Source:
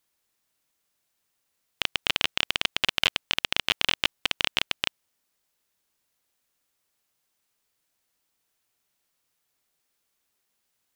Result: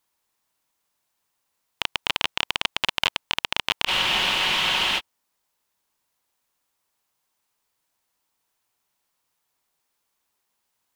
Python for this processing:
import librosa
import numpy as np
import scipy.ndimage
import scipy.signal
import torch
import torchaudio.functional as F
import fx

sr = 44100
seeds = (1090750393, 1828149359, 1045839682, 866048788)

y = fx.peak_eq(x, sr, hz=950.0, db=7.5, octaves=0.62)
y = fx.spec_freeze(y, sr, seeds[0], at_s=3.89, hold_s=1.1)